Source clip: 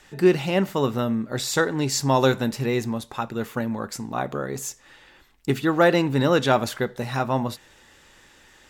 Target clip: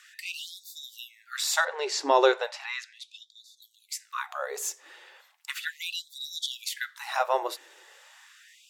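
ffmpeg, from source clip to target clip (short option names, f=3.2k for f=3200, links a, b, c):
-filter_complex "[0:a]asettb=1/sr,asplit=3[a][b][c];[a]atrim=end=1.654[d];[b]atrim=start=1.65:end=3.62,asetpts=PTS-STARTPTS,afade=t=in:d=0.004:c=qsin,afade=t=out:st=1.966:d=0.004:c=qsin,highpass=150,lowpass=4.8k[e];[c]atrim=start=3.616[f];[d][e]acrossfade=d=0.004:c1=hsin:c2=qsin[g];[g][f]acrossfade=d=0.004:c1=qsin:c2=hsin,afftfilt=real='re*gte(b*sr/1024,300*pow(3500/300,0.5+0.5*sin(2*PI*0.36*pts/sr)))':imag='im*gte(b*sr/1024,300*pow(3500/300,0.5+0.5*sin(2*PI*0.36*pts/sr)))':win_size=1024:overlap=0.75"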